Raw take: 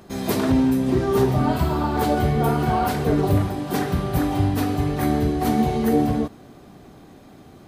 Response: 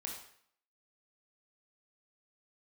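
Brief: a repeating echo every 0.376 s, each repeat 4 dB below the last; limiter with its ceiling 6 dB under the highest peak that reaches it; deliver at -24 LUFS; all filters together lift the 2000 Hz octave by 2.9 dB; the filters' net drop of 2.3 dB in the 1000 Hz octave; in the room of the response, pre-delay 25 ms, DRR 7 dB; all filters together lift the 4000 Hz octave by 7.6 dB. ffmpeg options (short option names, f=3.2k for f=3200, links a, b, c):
-filter_complex "[0:a]equalizer=f=1k:t=o:g=-4.5,equalizer=f=2k:t=o:g=3.5,equalizer=f=4k:t=o:g=8.5,alimiter=limit=-14.5dB:level=0:latency=1,aecho=1:1:376|752|1128|1504|1880|2256|2632|3008|3384:0.631|0.398|0.25|0.158|0.0994|0.0626|0.0394|0.0249|0.0157,asplit=2[a][b];[1:a]atrim=start_sample=2205,adelay=25[c];[b][c]afir=irnorm=-1:irlink=0,volume=-6dB[d];[a][d]amix=inputs=2:normalize=0,volume=-2dB"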